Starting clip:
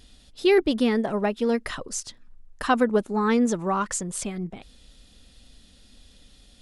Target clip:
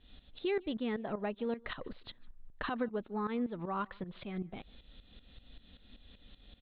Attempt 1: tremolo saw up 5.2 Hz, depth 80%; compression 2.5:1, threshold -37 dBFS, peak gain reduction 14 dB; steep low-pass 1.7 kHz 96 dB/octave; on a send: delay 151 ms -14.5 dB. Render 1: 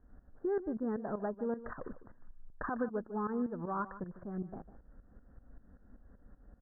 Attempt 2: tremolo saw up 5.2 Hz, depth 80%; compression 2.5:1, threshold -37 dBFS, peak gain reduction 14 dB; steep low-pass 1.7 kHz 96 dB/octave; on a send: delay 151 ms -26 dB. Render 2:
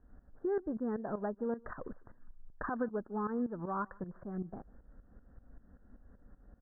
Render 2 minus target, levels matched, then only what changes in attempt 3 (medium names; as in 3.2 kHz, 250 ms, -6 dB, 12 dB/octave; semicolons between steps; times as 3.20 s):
2 kHz band -3.5 dB
change: steep low-pass 4 kHz 96 dB/octave